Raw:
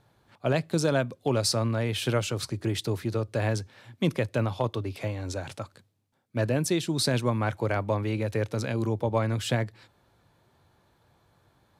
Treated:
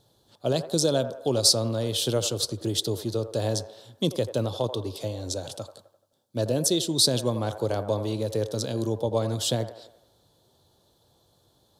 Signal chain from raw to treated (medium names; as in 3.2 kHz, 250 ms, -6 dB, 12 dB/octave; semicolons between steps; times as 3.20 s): FFT filter 180 Hz 0 dB, 510 Hz +5 dB, 2.3 kHz -12 dB, 3.4 kHz +10 dB; on a send: feedback echo behind a band-pass 86 ms, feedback 50%, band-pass 860 Hz, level -9.5 dB; on the sum: trim -2 dB